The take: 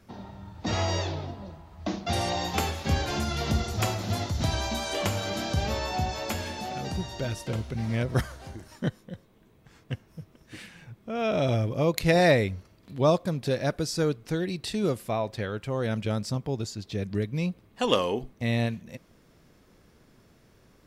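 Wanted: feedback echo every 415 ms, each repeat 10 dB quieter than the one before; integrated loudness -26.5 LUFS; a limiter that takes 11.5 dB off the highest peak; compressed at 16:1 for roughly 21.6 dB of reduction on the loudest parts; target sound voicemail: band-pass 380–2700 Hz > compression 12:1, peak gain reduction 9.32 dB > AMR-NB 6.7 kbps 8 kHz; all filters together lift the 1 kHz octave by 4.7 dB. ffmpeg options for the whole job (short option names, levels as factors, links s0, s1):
-af "equalizer=f=1000:t=o:g=7,acompressor=threshold=0.0158:ratio=16,alimiter=level_in=2.66:limit=0.0631:level=0:latency=1,volume=0.376,highpass=380,lowpass=2700,aecho=1:1:415|830|1245|1660:0.316|0.101|0.0324|0.0104,acompressor=threshold=0.00562:ratio=12,volume=20" -ar 8000 -c:a libopencore_amrnb -b:a 6700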